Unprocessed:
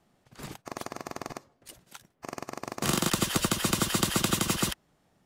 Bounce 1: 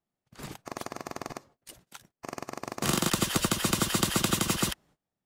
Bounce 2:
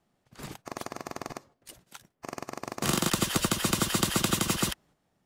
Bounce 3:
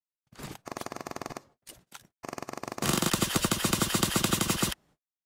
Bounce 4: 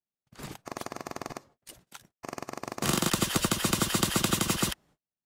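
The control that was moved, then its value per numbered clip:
gate, range: -21 dB, -6 dB, -49 dB, -35 dB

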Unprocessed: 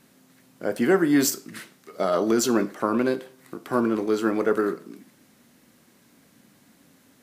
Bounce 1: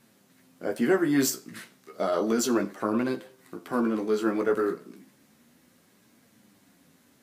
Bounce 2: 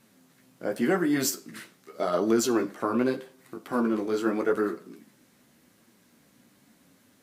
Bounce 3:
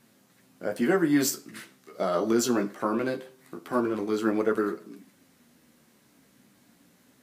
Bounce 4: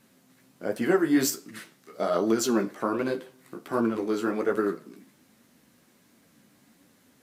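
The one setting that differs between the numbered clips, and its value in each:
flange, rate: 0.32 Hz, 0.85 Hz, 0.22 Hz, 1.3 Hz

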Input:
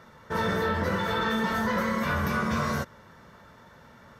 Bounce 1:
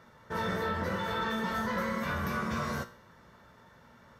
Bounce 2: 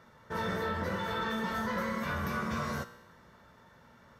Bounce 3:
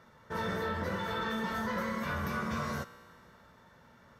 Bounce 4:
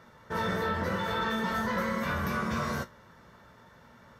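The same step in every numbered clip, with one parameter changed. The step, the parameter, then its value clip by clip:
feedback comb, decay: 0.48 s, 1 s, 2.2 s, 0.2 s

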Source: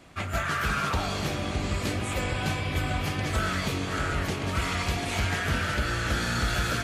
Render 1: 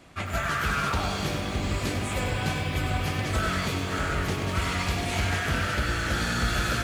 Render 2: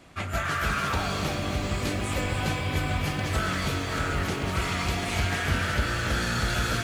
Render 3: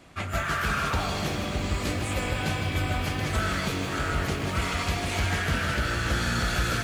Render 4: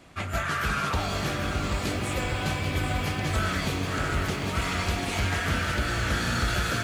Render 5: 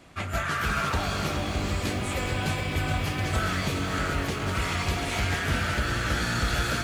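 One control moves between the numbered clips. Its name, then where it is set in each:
bit-crushed delay, time: 98 ms, 277 ms, 155 ms, 788 ms, 421 ms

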